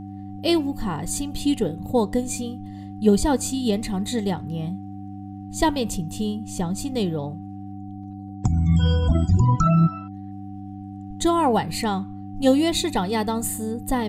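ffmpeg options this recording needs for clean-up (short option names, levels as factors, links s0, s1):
-af "bandreject=f=98.9:t=h:w=4,bandreject=f=197.8:t=h:w=4,bandreject=f=296.7:t=h:w=4,bandreject=f=750:w=30"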